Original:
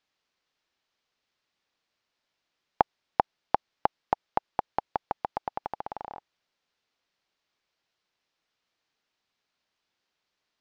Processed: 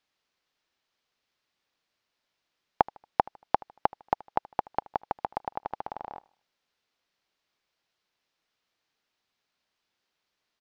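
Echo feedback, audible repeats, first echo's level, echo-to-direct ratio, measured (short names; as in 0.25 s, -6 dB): 39%, 2, -23.0 dB, -22.5 dB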